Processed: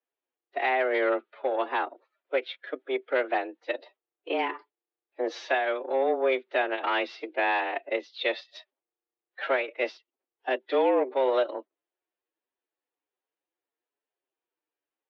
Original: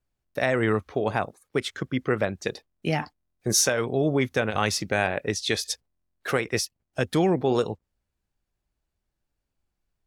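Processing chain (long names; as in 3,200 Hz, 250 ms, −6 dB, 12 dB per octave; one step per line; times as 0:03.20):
harmonic generator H 5 −14 dB, 7 −16 dB, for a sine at −8.5 dBFS
phase-vocoder stretch with locked phases 1.5×
single-sideband voice off tune +130 Hz 190–3,500 Hz
level −3 dB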